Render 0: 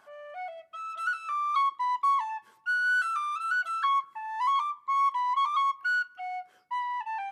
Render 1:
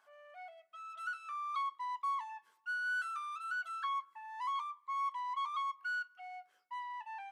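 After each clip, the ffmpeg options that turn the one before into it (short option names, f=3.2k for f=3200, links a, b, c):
-af "highpass=f=830:p=1,volume=-9dB"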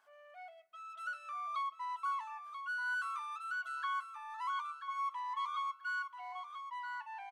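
-af "aecho=1:1:985|1970|2955:0.376|0.0789|0.0166,volume=-1dB"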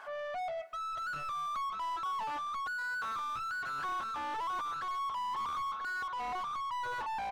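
-filter_complex "[0:a]asplit=2[a][b];[b]highpass=f=720:p=1,volume=35dB,asoftclip=type=tanh:threshold=-28dB[c];[a][c]amix=inputs=2:normalize=0,lowpass=f=1.1k:p=1,volume=-6dB"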